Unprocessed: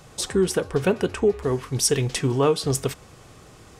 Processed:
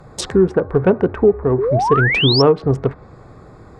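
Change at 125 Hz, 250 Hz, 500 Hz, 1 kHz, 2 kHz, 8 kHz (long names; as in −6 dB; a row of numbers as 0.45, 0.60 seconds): +7.5 dB, +7.5 dB, +7.5 dB, +11.0 dB, +13.0 dB, can't be measured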